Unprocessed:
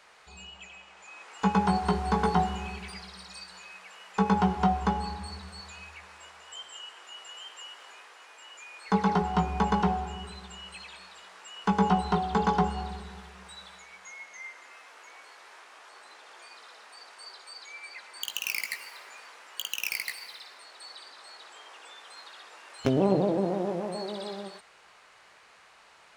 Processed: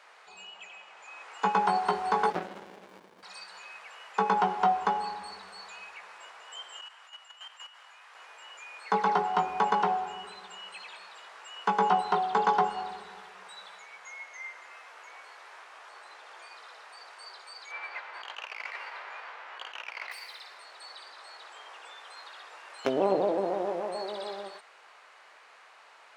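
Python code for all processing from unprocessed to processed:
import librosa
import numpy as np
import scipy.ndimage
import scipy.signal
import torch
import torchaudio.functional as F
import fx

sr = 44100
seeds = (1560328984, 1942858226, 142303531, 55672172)

y = fx.chain(x, sr, fx.highpass(hz=110.0, slope=24),
    fx.running_max(window=65), at=(2.3, 3.23))
y = fx.chain(y, sr, fx.highpass(hz=720.0, slope=12),
    fx.level_steps(step_db=11), at=(6.81, 8.15))
y = fx.envelope_flatten(y, sr, power=0.6, at=(17.7, 20.11), fade=0.02)
y = fx.over_compress(y, sr, threshold_db=-38.0, ratio=-1.0, at=(17.7, 20.11), fade=0.02)
y = fx.bandpass_edges(y, sr, low_hz=520.0, high_hz=2200.0, at=(17.7, 20.11), fade=0.02)
y = scipy.signal.sosfilt(scipy.signal.butter(2, 490.0, 'highpass', fs=sr, output='sos'), y)
y = fx.high_shelf(y, sr, hz=3400.0, db=-8.5)
y = y * librosa.db_to_amplitude(3.5)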